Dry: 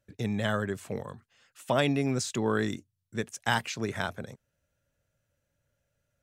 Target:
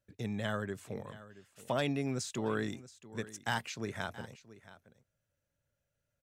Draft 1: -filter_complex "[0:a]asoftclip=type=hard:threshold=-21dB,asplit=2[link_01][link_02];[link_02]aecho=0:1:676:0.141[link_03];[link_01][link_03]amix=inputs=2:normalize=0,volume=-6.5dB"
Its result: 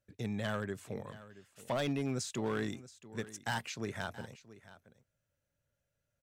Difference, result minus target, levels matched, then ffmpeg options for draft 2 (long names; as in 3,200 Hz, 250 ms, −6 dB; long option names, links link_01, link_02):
hard clipping: distortion +12 dB
-filter_complex "[0:a]asoftclip=type=hard:threshold=-14.5dB,asplit=2[link_01][link_02];[link_02]aecho=0:1:676:0.141[link_03];[link_01][link_03]amix=inputs=2:normalize=0,volume=-6.5dB"